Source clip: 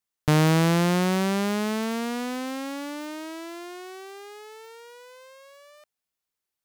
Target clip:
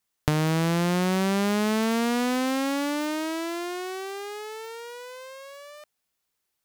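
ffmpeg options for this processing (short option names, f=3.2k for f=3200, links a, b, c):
-af "acompressor=threshold=-28dB:ratio=16,volume=7dB"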